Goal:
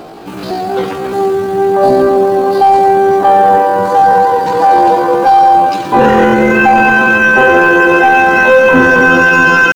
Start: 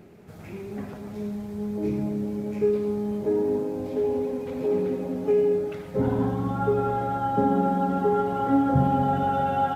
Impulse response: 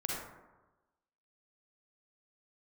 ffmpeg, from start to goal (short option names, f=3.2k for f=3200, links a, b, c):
-af "asetrate=83250,aresample=44100,atempo=0.529732,apsyclip=21.5dB,volume=-2dB"